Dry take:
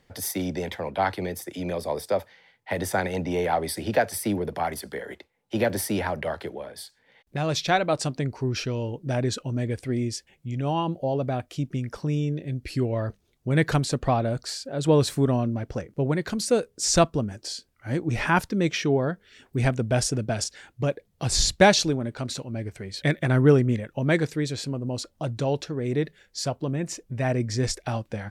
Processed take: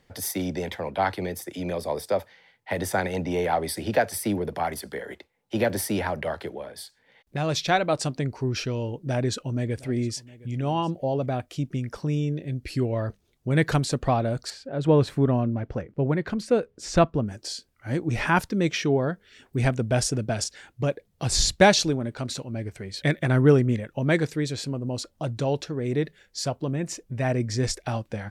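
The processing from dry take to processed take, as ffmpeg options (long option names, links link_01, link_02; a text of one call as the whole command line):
ffmpeg -i in.wav -filter_complex "[0:a]asettb=1/sr,asplit=3[link_01][link_02][link_03];[link_01]atrim=end=8.984[link_04];[link_02]atrim=start=8.98:end=11.26,asetpts=PTS-STARTPTS,afade=type=in:duration=0.004:curve=qsin,afade=type=out:start_time=2.276:duration=0.004:curve=qsin,aecho=1:1:713:0.0891,atrim=end_sample=100548[link_05];[link_03]atrim=start=11.256[link_06];[link_04][link_05]acrossfade=duration=0.004:curve1=hsin:curve2=qsin[link_07];[link_07][link_06]acrossfade=duration=0.004:curve1=qsin:curve2=hsin,asettb=1/sr,asplit=3[link_08][link_09][link_10];[link_08]atrim=end=14.504[link_11];[link_09]atrim=start=14.5:end=17.26,asetpts=PTS-STARTPTS,afade=type=in:duration=0.004:curve=qsin,afade=type=out:start_time=2.756:duration=0.004:curve=qsin,bass=frequency=250:gain=1,treble=frequency=4000:gain=-15[link_12];[link_10]atrim=start=17.256[link_13];[link_11][link_12]acrossfade=duration=0.004:curve1=hsin:curve2=qsin[link_14];[link_14][link_13]acrossfade=duration=0.004:curve1=qsin:curve2=hsin" out.wav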